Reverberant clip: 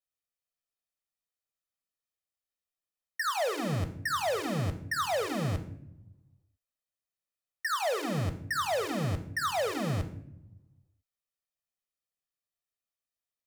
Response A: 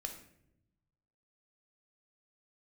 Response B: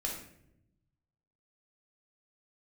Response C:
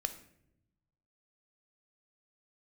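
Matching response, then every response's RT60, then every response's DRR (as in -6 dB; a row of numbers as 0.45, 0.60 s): C; not exponential, 0.75 s, not exponential; 4.0, -2.0, 8.5 dB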